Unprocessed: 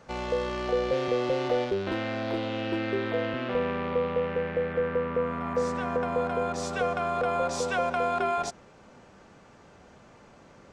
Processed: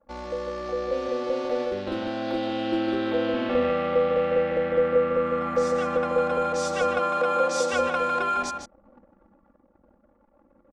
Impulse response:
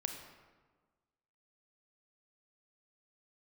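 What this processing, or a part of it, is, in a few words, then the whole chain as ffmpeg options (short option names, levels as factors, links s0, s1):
voice memo with heavy noise removal: -filter_complex "[0:a]asettb=1/sr,asplit=3[s0][s1][s2];[s0]atrim=end=6.844[s3];[s1]atrim=start=6.84:end=7.73,asetpts=PTS-STARTPTS,afade=t=in:d=0.004:c=qsin,afade=t=out:st=0.886:d=0.004:c=qsin,highpass=170[s4];[s2]atrim=start=7.726[s5];[s3][s4]acrossfade=d=0.004:c1=hsin:c2=qsin[s6];[s6][s5]acrossfade=d=0.004:c1=qsin:c2=hsin,aecho=1:1:3.6:0.99,asplit=2[s7][s8];[s8]adelay=151.6,volume=0.501,highshelf=f=4000:g=-3.41[s9];[s7][s9]amix=inputs=2:normalize=0,anlmdn=0.0398,dynaudnorm=f=330:g=13:m=2.51,volume=0.473"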